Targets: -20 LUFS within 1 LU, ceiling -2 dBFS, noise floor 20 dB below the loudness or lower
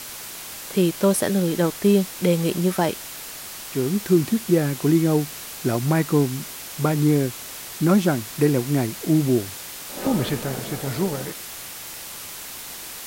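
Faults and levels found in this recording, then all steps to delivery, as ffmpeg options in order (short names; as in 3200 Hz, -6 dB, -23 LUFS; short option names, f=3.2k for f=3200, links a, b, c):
noise floor -36 dBFS; noise floor target -42 dBFS; loudness -22.0 LUFS; peak -6.0 dBFS; loudness target -20.0 LUFS
-> -af "afftdn=nr=6:nf=-36"
-af "volume=2dB"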